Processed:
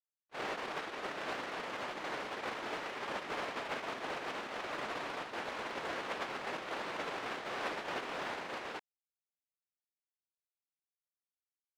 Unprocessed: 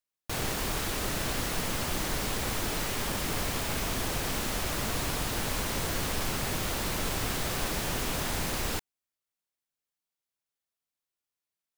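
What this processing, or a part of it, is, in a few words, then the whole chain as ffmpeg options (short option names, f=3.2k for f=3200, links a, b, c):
walkie-talkie: -af "highpass=410,lowpass=2.4k,asoftclip=type=hard:threshold=-32.5dB,agate=range=-52dB:threshold=-35dB:ratio=16:detection=peak,volume=13dB"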